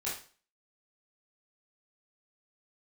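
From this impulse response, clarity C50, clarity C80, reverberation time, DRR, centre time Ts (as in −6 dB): 5.0 dB, 11.0 dB, 0.40 s, −8.5 dB, 37 ms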